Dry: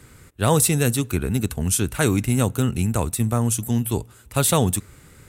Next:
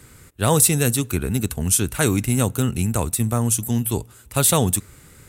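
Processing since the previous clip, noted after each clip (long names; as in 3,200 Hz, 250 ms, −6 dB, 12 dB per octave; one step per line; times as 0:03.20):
high-shelf EQ 5,300 Hz +5 dB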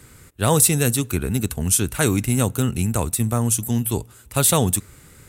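no processing that can be heard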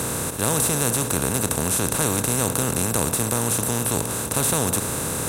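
compressor on every frequency bin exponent 0.2
level −10.5 dB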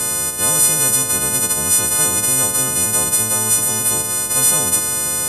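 every partial snapped to a pitch grid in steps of 3 semitones
low-pass filter 11,000 Hz 12 dB per octave
level −2 dB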